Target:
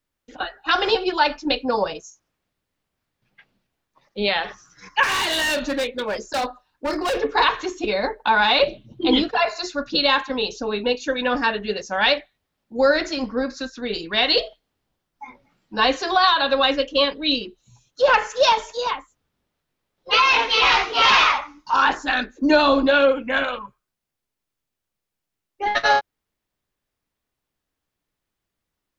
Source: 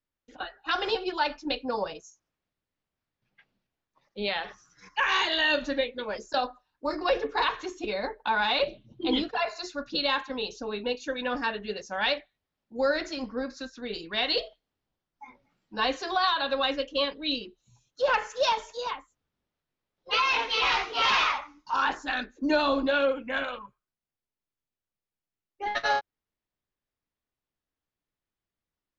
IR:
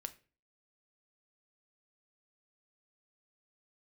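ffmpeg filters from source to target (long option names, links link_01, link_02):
-filter_complex "[0:a]asettb=1/sr,asplit=3[link_01][link_02][link_03];[link_01]atrim=end=5.034[link_04];[link_02]atrim=start=5.03:end=7.21,asetpts=PTS-STARTPTS,afade=type=in:duration=0.004:curve=qsin,afade=type=out:start_time=2.176:duration=0.004:curve=qsin,volume=28.5dB,asoftclip=hard,volume=-28.5dB[link_05];[link_03]atrim=start=7.206[link_06];[link_04][link_05]acrossfade=duration=0.004:curve1=hsin:curve2=qsin[link_07];[link_07][link_06]acrossfade=duration=0.004:curve1=qsin:curve2=hsin,volume=8.5dB"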